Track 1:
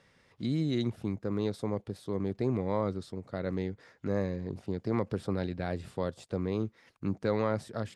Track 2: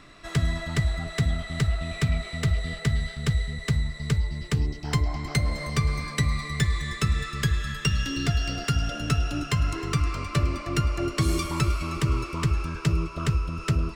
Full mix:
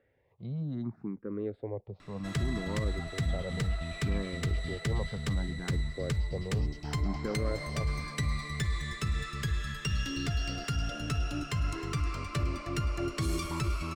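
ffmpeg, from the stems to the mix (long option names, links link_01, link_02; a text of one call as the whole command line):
ffmpeg -i stem1.wav -i stem2.wav -filter_complex "[0:a]lowpass=1400,asplit=2[link_01][link_02];[link_02]afreqshift=0.66[link_03];[link_01][link_03]amix=inputs=2:normalize=1,volume=-2dB[link_04];[1:a]adelay=2000,volume=-5.5dB[link_05];[link_04][link_05]amix=inputs=2:normalize=0,alimiter=limit=-22dB:level=0:latency=1:release=25" out.wav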